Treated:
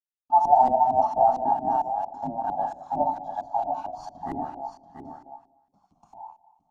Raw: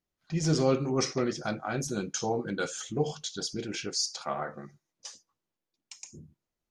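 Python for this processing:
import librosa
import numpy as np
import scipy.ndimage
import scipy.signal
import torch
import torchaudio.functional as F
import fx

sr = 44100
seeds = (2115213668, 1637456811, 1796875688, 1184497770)

y = fx.band_invert(x, sr, width_hz=1000)
y = fx.low_shelf(y, sr, hz=91.0, db=-11.5)
y = fx.hum_notches(y, sr, base_hz=60, count=6)
y = fx.quant_companded(y, sr, bits=4)
y = y + 10.0 ** (-9.0 / 20.0) * np.pad(y, (int(687 * sr / 1000.0), 0))[:len(y)]
y = fx.rev_schroeder(y, sr, rt60_s=1.1, comb_ms=33, drr_db=11.0)
y = fx.filter_lfo_lowpass(y, sr, shape='saw_up', hz=4.4, low_hz=370.0, high_hz=2000.0, q=2.0)
y = fx.level_steps(y, sr, step_db=11, at=(1.9, 2.44))
y = fx.curve_eq(y, sr, hz=(270.0, 490.0, 730.0, 1000.0, 1900.0, 3000.0, 11000.0), db=(0, -25, 4, -1, -26, -14, 5))
y = y * 10.0 ** (5.5 / 20.0)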